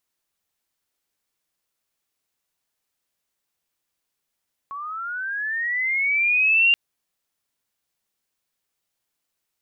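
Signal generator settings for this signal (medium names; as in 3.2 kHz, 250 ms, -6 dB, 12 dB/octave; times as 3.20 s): sweep linear 1.1 kHz -> 2.8 kHz -30 dBFS -> -13 dBFS 2.03 s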